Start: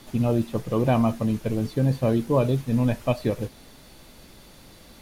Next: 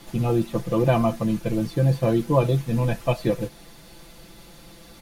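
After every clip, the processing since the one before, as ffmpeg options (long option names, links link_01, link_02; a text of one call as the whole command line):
ffmpeg -i in.wav -af "aecho=1:1:5.9:0.79" out.wav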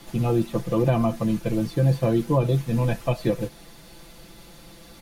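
ffmpeg -i in.wav -filter_complex "[0:a]acrossover=split=400[link_01][link_02];[link_02]acompressor=threshold=-23dB:ratio=6[link_03];[link_01][link_03]amix=inputs=2:normalize=0" out.wav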